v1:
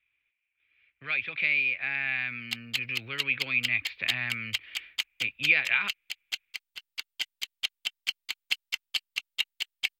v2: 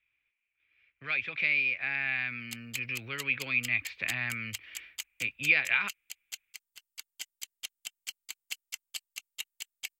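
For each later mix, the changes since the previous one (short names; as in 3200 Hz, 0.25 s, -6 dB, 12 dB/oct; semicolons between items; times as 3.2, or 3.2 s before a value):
background -9.5 dB; master: add resonant high shelf 5300 Hz +11 dB, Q 1.5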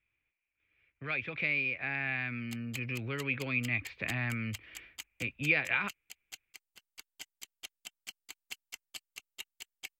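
master: add tilt shelf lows +7.5 dB, about 1200 Hz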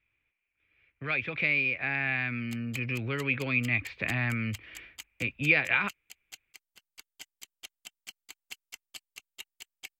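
speech +4.5 dB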